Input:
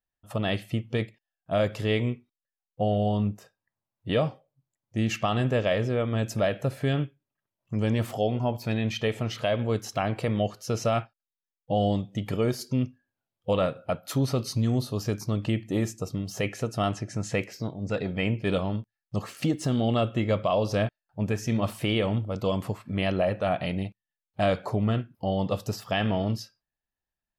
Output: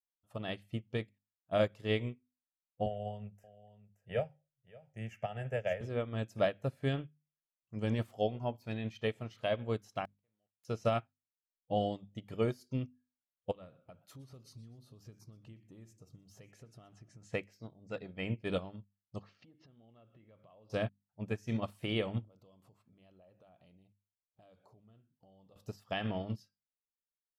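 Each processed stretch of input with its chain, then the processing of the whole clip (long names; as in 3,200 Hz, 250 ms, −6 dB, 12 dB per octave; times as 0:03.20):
0:02.86–0:05.81: phaser with its sweep stopped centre 1,100 Hz, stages 6 + single-tap delay 575 ms −13 dB + multiband upward and downward compressor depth 40%
0:10.05–0:10.65: double-tracking delay 42 ms −12.5 dB + centre clipping without the shift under −33 dBFS + gate with flip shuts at −28 dBFS, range −36 dB
0:13.51–0:17.22: low-shelf EQ 200 Hz +8 dB + downward compressor 5 to 1, threshold −30 dBFS + feedback echo with a swinging delay time 121 ms, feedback 45%, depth 196 cents, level −20 dB
0:19.20–0:20.70: treble cut that deepens with the level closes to 2,900 Hz, closed at −22.5 dBFS + Butterworth low-pass 5,400 Hz + downward compressor 12 to 1, threshold −35 dBFS
0:22.28–0:25.56: downward compressor 5 to 1, threshold −38 dBFS + parametric band 1,900 Hz −7.5 dB 0.96 octaves
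whole clip: mains-hum notches 50/100/150/200/250 Hz; expander for the loud parts 2.5 to 1, over −34 dBFS; level −3 dB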